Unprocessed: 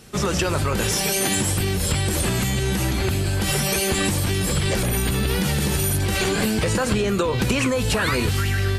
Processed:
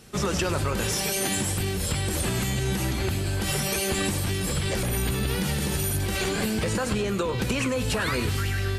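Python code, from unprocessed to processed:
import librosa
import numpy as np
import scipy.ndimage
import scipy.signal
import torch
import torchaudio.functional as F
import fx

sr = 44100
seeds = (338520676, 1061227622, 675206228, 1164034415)

p1 = fx.rider(x, sr, range_db=10, speed_s=2.0)
p2 = p1 + fx.echo_feedback(p1, sr, ms=101, feedback_pct=57, wet_db=-15.0, dry=0)
y = F.gain(torch.from_numpy(p2), -5.0).numpy()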